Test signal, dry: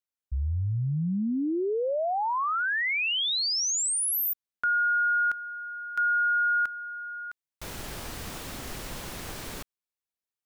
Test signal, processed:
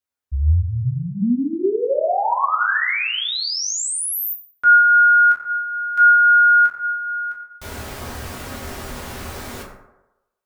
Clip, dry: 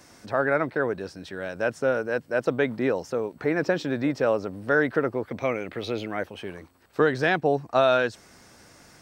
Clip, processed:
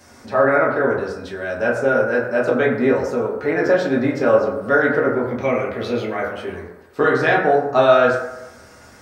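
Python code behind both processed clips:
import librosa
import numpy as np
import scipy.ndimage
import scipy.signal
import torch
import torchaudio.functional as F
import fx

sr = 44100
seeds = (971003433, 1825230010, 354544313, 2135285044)

y = fx.rev_fdn(x, sr, rt60_s=1.0, lf_ratio=0.75, hf_ratio=0.4, size_ms=74.0, drr_db=-5.0)
y = y * librosa.db_to_amplitude(1.0)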